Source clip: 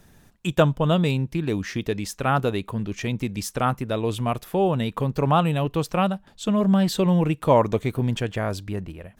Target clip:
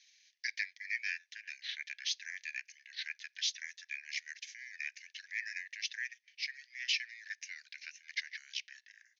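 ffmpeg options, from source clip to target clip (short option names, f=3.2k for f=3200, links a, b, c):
-af "asuperpass=centerf=5400:order=20:qfactor=0.74,asetrate=28595,aresample=44100,atempo=1.54221,highshelf=f=4.3k:g=7,volume=-2.5dB"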